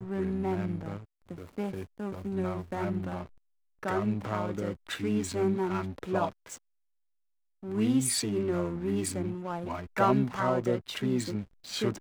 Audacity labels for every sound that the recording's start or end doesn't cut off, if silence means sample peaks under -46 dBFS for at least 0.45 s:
3.830000	6.570000	sound